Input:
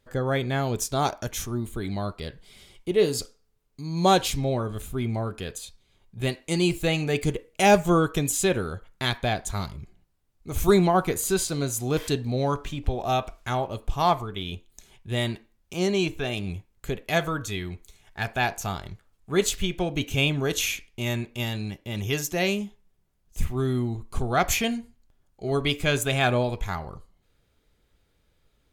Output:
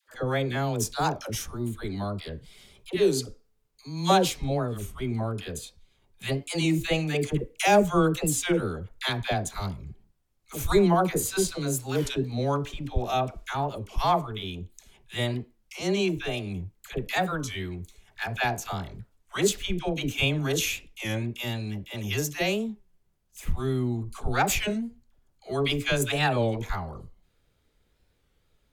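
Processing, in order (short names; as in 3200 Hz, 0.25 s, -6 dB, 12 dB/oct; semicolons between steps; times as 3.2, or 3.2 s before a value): dispersion lows, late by 88 ms, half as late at 630 Hz; record warp 33 1/3 rpm, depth 160 cents; gain -1.5 dB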